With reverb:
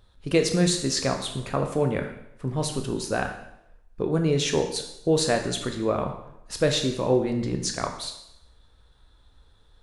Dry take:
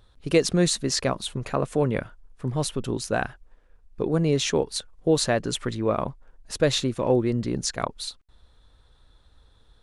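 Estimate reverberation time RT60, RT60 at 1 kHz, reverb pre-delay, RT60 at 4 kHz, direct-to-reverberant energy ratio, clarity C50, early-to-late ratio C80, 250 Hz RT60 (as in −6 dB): 0.80 s, 0.80 s, 8 ms, 0.75 s, 4.0 dB, 7.5 dB, 10.0 dB, 0.75 s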